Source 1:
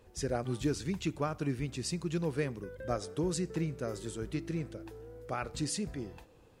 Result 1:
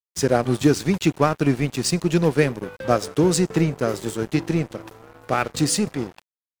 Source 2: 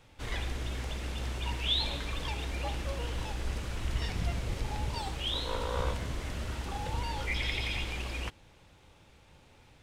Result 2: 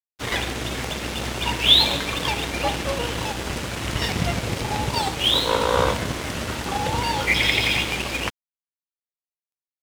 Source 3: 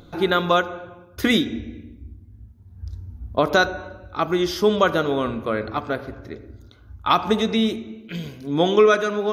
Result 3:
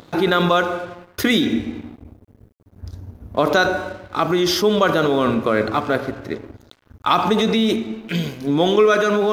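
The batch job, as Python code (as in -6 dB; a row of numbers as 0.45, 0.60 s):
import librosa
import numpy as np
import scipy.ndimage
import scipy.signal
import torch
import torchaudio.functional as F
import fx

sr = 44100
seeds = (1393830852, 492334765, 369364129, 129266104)

p1 = scipy.signal.sosfilt(scipy.signal.butter(2, 120.0, 'highpass', fs=sr, output='sos'), x)
p2 = fx.over_compress(p1, sr, threshold_db=-26.0, ratio=-1.0)
p3 = p1 + F.gain(torch.from_numpy(p2), 2.0).numpy()
p4 = np.sign(p3) * np.maximum(np.abs(p3) - 10.0 ** (-40.5 / 20.0), 0.0)
y = p4 * 10.0 ** (-3 / 20.0) / np.max(np.abs(p4))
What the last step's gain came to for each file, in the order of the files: +9.0, +9.0, -0.5 dB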